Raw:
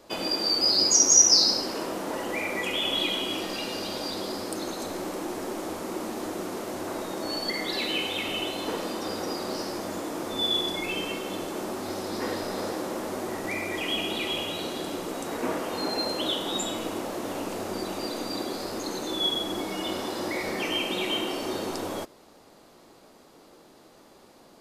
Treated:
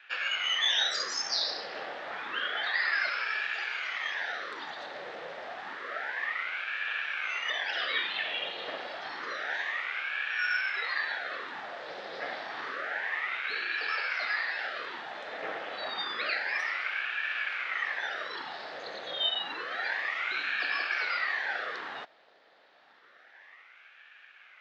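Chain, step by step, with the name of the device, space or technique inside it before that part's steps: voice changer toy (ring modulator with a swept carrier 1100 Hz, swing 85%, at 0.29 Hz; speaker cabinet 600–3800 Hz, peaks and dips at 1000 Hz -8 dB, 1800 Hz +8 dB, 3600 Hz +3 dB)

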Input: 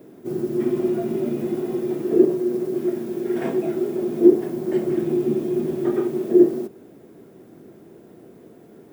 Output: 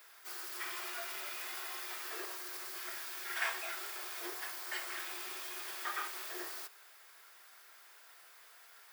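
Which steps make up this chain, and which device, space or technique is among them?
headphones lying on a table (HPF 1200 Hz 24 dB/oct; bell 4700 Hz +5.5 dB 0.4 oct); gain +5 dB

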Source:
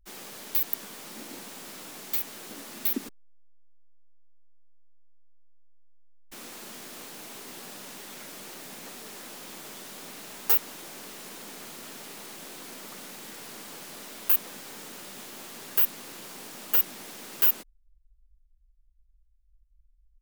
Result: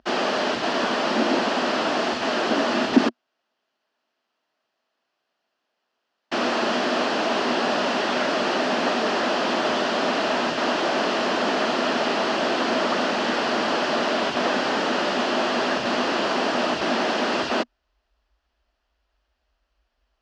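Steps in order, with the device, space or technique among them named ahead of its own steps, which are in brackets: overdrive pedal into a guitar cabinet (overdrive pedal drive 36 dB, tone 5800 Hz, clips at -6.5 dBFS; speaker cabinet 92–4200 Hz, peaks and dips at 98 Hz -4 dB, 240 Hz +9 dB, 350 Hz +4 dB, 640 Hz +8 dB, 2200 Hz -9 dB, 3700 Hz -8 dB); gain -1 dB

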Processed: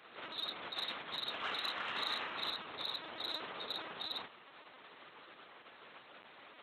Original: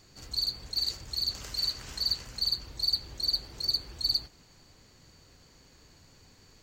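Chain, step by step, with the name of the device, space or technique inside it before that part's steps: talking toy (LPC vocoder at 8 kHz; HPF 510 Hz 12 dB/oct; bell 1200 Hz +4.5 dB 0.52 oct; soft clip -36 dBFS, distortion -22 dB); 1.91–2.51 doubler 37 ms -3.5 dB; gain +8 dB

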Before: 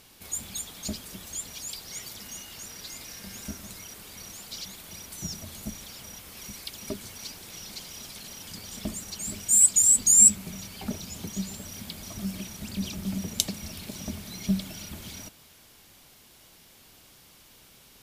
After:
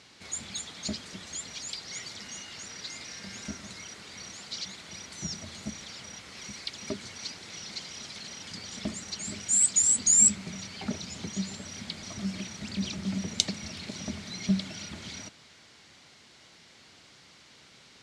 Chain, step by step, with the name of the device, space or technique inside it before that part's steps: car door speaker (speaker cabinet 91–7200 Hz, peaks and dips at 1400 Hz +3 dB, 2000 Hz +6 dB, 4200 Hz +4 dB)

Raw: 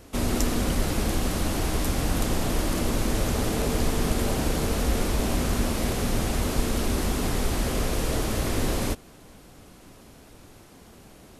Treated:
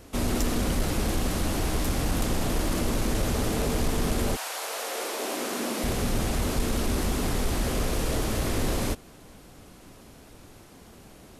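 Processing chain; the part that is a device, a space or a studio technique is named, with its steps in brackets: 4.35–5.83 HPF 810 Hz -> 200 Hz 24 dB/oct; saturation between pre-emphasis and de-emphasis (high shelf 8500 Hz +8 dB; soft clip -16 dBFS, distortion -20 dB; high shelf 8500 Hz -8 dB)

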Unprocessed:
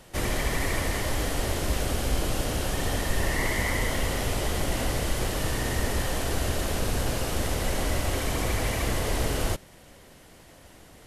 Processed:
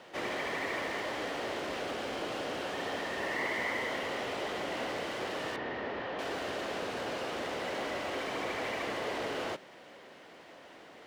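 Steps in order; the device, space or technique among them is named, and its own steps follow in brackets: phone line with mismatched companding (BPF 330–3400 Hz; G.711 law mismatch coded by mu); 5.56–6.19 air absorption 260 m; gain -4.5 dB

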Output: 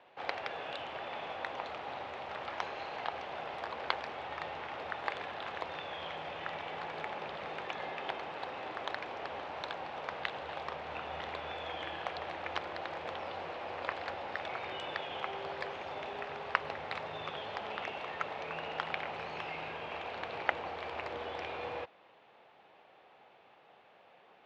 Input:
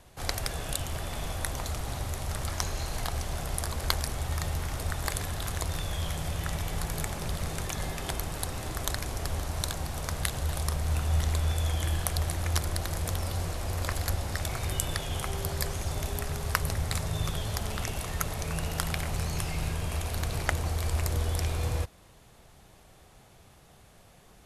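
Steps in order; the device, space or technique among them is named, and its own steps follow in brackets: phone earpiece (speaker cabinet 400–3200 Hz, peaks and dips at 510 Hz +3 dB, 840 Hz +5 dB, 2600 Hz +3 dB); gain -2 dB

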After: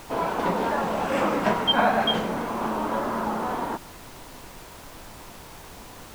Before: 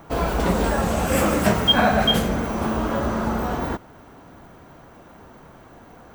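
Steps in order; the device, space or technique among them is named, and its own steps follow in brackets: horn gramophone (BPF 210–3800 Hz; bell 950 Hz +7 dB 0.39 oct; wow and flutter; pink noise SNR 17 dB); gain -3.5 dB

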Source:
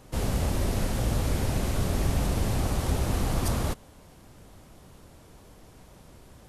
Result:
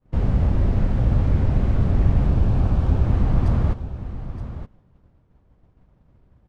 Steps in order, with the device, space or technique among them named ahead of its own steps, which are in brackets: hearing-loss simulation (LPF 1900 Hz 12 dB/oct; expander -41 dBFS); 2.29–3.04 notch 2000 Hz, Q 6.6; tone controls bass +9 dB, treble +4 dB; echo 0.921 s -12 dB

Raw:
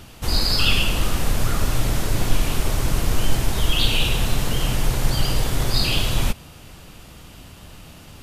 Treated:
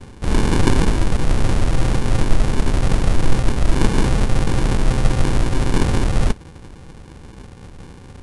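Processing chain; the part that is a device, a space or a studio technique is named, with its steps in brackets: crushed at another speed (playback speed 2×; sample-and-hold 34×; playback speed 0.5×); gain +4 dB

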